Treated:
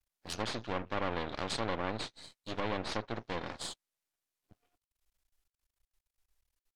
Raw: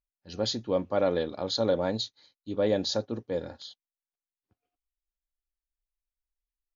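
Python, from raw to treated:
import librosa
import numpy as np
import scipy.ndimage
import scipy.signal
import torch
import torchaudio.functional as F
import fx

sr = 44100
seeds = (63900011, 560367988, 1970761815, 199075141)

y = np.maximum(x, 0.0)
y = fx.env_lowpass_down(y, sr, base_hz=1900.0, full_db=-26.5)
y = fx.spectral_comp(y, sr, ratio=2.0)
y = F.gain(torch.from_numpy(y), -5.0).numpy()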